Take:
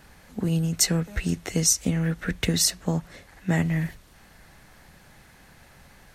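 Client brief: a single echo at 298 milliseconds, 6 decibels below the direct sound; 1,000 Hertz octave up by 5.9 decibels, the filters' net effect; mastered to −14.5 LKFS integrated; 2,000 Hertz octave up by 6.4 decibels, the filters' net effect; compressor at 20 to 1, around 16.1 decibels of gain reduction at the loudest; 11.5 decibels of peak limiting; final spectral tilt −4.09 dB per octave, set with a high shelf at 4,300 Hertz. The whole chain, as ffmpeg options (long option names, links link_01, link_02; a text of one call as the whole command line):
ffmpeg -i in.wav -af "equalizer=frequency=1000:width_type=o:gain=6.5,equalizer=frequency=2000:width_type=o:gain=4.5,highshelf=frequency=4300:gain=6,acompressor=threshold=-27dB:ratio=20,alimiter=limit=-23.5dB:level=0:latency=1,aecho=1:1:298:0.501,volume=20dB" out.wav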